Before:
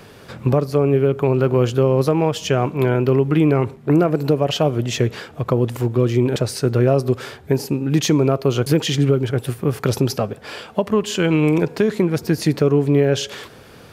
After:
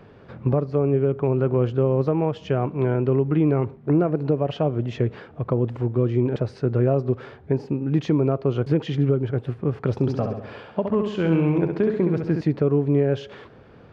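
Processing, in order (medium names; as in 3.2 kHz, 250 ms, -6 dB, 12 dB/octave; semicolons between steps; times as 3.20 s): tape spacing loss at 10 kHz 37 dB; 9.94–12.41 s: flutter echo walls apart 11.5 m, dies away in 0.71 s; trim -3 dB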